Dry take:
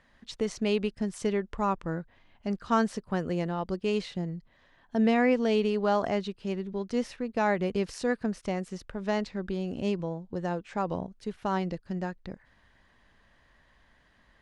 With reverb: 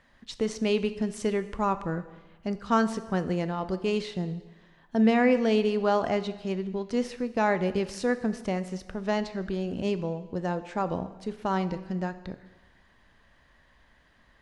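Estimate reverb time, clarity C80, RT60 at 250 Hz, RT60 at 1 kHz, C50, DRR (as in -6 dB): 1.2 s, 15.5 dB, 1.3 s, 1.2 s, 14.0 dB, 12.0 dB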